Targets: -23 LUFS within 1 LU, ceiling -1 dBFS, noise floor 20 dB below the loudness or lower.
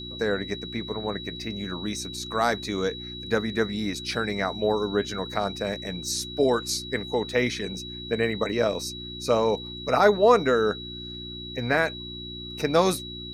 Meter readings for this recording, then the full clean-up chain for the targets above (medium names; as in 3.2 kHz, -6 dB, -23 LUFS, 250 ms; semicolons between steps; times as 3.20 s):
hum 60 Hz; highest harmonic 360 Hz; hum level -38 dBFS; steady tone 3.9 kHz; tone level -37 dBFS; loudness -26.5 LUFS; peak level -6.0 dBFS; loudness target -23.0 LUFS
-> de-hum 60 Hz, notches 6; band-stop 3.9 kHz, Q 30; trim +3.5 dB